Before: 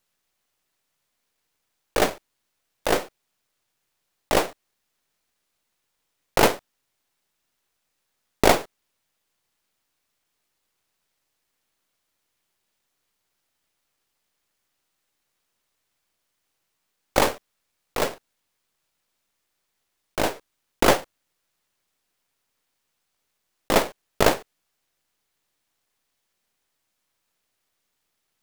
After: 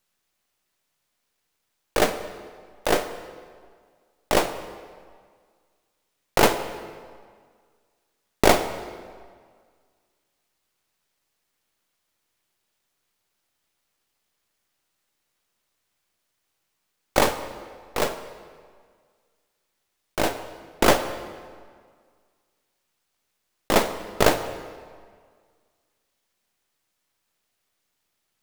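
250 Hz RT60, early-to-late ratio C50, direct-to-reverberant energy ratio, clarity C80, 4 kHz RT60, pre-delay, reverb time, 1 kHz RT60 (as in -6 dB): 1.8 s, 11.0 dB, 9.5 dB, 12.5 dB, 1.4 s, 3 ms, 1.9 s, 1.9 s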